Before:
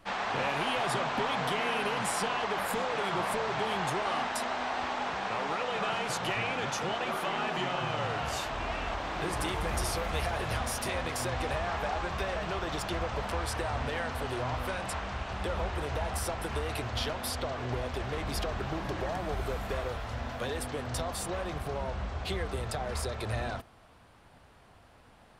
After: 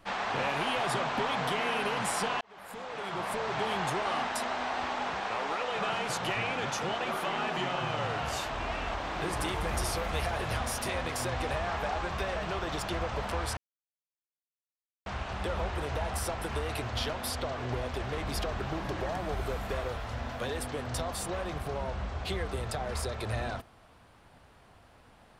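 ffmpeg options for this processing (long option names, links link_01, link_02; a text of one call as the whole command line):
ffmpeg -i in.wav -filter_complex "[0:a]asettb=1/sr,asplit=3[link_01][link_02][link_03];[link_01]atrim=end=5.204[link_04];[link_02]atrim=start=5.2:end=5.77,asetpts=PTS-STARTPTS,afade=type=in:duration=0.004:curve=qsin,afade=type=out:start_time=0.566:duration=0.004:curve=qsin,equalizer=frequency=150:width=1.5:gain=-9.5[link_05];[link_03]atrim=start=5.766[link_06];[link_04][link_05]acrossfade=duration=0.004:curve1=hsin:curve2=qsin[link_07];[link_07][link_06]acrossfade=duration=0.004:curve1=qsin:curve2=hsin,asplit=4[link_08][link_09][link_10][link_11];[link_08]atrim=end=2.41,asetpts=PTS-STARTPTS,afade=type=out:start_time=2.406:duration=0.004:curve=hsin[link_12];[link_09]atrim=start=2.41:end=13.57,asetpts=PTS-STARTPTS,afade=type=in:duration=1.21,afade=type=out:start_time=11.156:duration=0.004:curve=hsin[link_13];[link_10]atrim=start=13.57:end=15.06,asetpts=PTS-STARTPTS,volume=0[link_14];[link_11]atrim=start=15.06,asetpts=PTS-STARTPTS,afade=type=in:duration=0.004:curve=hsin[link_15];[link_12][link_13][link_14][link_15]concat=n=4:v=0:a=1" out.wav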